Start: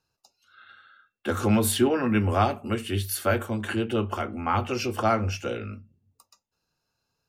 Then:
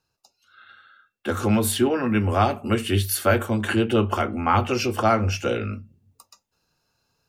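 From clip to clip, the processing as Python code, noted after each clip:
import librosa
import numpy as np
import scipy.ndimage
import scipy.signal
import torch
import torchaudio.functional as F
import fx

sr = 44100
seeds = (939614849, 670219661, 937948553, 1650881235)

y = fx.rider(x, sr, range_db=3, speed_s=0.5)
y = y * 10.0 ** (4.0 / 20.0)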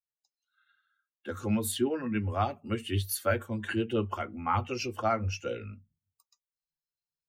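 y = fx.bin_expand(x, sr, power=1.5)
y = y * 10.0 ** (-6.5 / 20.0)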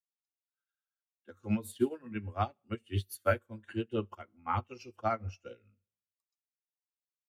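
y = fx.rev_plate(x, sr, seeds[0], rt60_s=0.72, hf_ratio=0.95, predelay_ms=0, drr_db=19.0)
y = fx.upward_expand(y, sr, threshold_db=-41.0, expansion=2.5)
y = y * 10.0 ** (1.0 / 20.0)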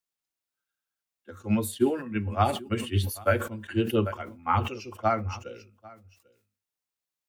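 y = fx.rider(x, sr, range_db=5, speed_s=0.5)
y = y + 10.0 ** (-23.0 / 20.0) * np.pad(y, (int(794 * sr / 1000.0), 0))[:len(y)]
y = fx.sustainer(y, sr, db_per_s=100.0)
y = y * 10.0 ** (6.5 / 20.0)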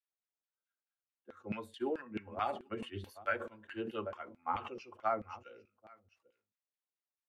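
y = fx.filter_lfo_bandpass(x, sr, shape='saw_down', hz=4.6, low_hz=340.0, high_hz=2600.0, q=1.0)
y = y * 10.0 ** (-5.5 / 20.0)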